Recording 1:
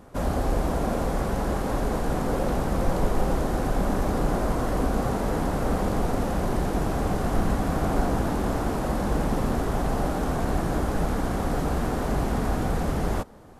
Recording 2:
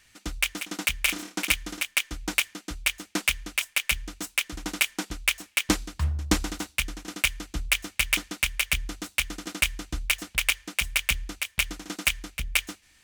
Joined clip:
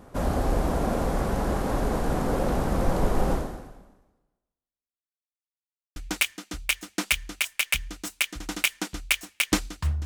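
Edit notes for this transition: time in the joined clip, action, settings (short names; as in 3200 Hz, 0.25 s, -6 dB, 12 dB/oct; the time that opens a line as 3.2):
recording 1
3.33–5.12 fade out exponential
5.12–5.96 mute
5.96 switch to recording 2 from 2.13 s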